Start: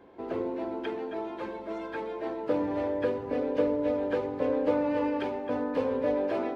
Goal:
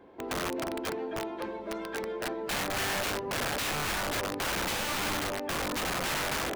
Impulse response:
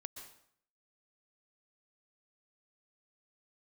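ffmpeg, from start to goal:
-filter_complex "[0:a]asettb=1/sr,asplit=3[s0][s1][s2];[s0]atrim=end=1.624[s3];[s1]atrim=start=1.62:end=3.72,asetpts=PTS-STARTPTS,afade=t=in:d=0.004:c=qsin,afade=t=out:st=2.096:d=0.004:c=qsin,aecho=1:1:5.1:0.5,atrim=end_sample=92610[s4];[s2]atrim=start=3.716[s5];[s3][s4]acrossfade=d=0.004:c1=hsin:c2=qsin[s6];[s6][s5]acrossfade=d=0.004:c1=qsin:c2=hsin,aeval=exprs='(mod(21.1*val(0)+1,2)-1)/21.1':c=same"

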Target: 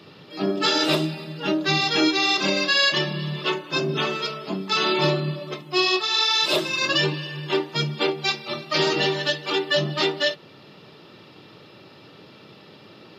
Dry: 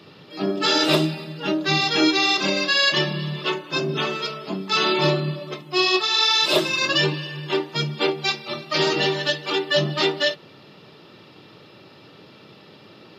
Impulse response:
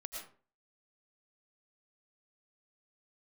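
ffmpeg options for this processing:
-af "alimiter=limit=0.316:level=0:latency=1:release=410"

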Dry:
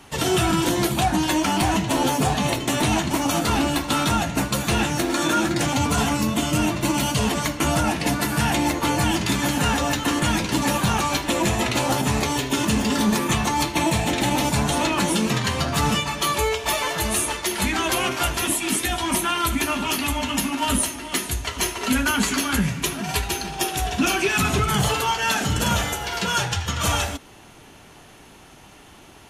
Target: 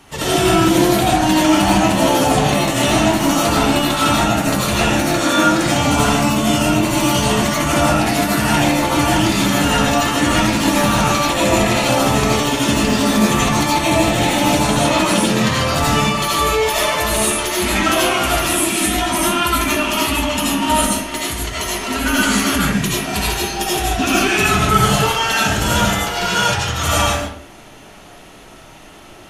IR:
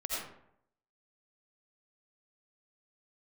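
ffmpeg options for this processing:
-filter_complex "[0:a]asettb=1/sr,asplit=3[s0][s1][s2];[s0]atrim=end=20.994[s3];[s1]atrim=start=20.99:end=22.02,asetpts=PTS-STARTPTS,afade=t=in:d=0.004:c=qsin,afade=t=out:st=1.026:d=0.004:c=qsin,acompressor=threshold=0.0562:ratio=2[s4];[s2]atrim=start=22.016[s5];[s3][s4]acrossfade=d=0.004:c1=hsin:c2=qsin[s6];[s6][s5]acrossfade=d=0.004:c1=qsin:c2=hsin[s7];[1:a]atrim=start_sample=2205,afade=t=out:st=0.35:d=0.01,atrim=end_sample=15876[s8];[s7][s8]afir=irnorm=-1:irlink=0,volume=1.41"

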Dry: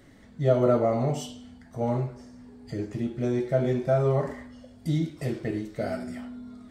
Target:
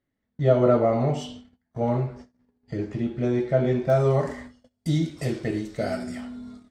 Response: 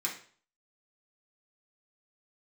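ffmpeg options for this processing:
-af "asetnsamples=n=441:p=0,asendcmd='3.9 lowpass f 6600',lowpass=3100,aemphasis=mode=production:type=50fm,agate=range=0.0316:threshold=0.00631:ratio=16:detection=peak,volume=1.41"

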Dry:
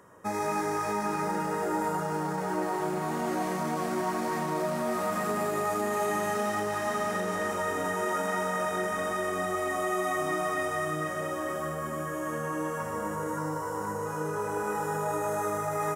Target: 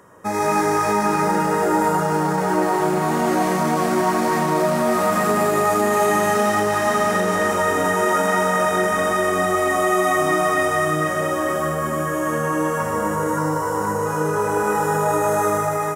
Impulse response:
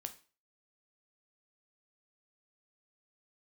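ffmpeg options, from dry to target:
-af "dynaudnorm=f=140:g=5:m=1.78,volume=2"

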